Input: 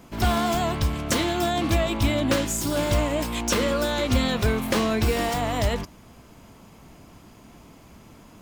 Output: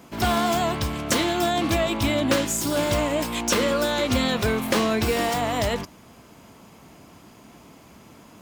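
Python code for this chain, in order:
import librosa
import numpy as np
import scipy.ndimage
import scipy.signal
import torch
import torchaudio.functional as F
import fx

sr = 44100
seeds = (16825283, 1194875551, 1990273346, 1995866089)

y = fx.highpass(x, sr, hz=150.0, slope=6)
y = y * 10.0 ** (2.0 / 20.0)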